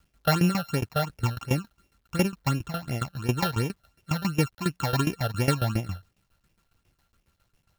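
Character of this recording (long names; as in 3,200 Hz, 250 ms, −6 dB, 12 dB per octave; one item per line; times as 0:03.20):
a buzz of ramps at a fixed pitch in blocks of 32 samples
phaser sweep stages 8, 2.8 Hz, lowest notch 290–1,300 Hz
a quantiser's noise floor 12 bits, dither none
tremolo saw down 7.3 Hz, depth 85%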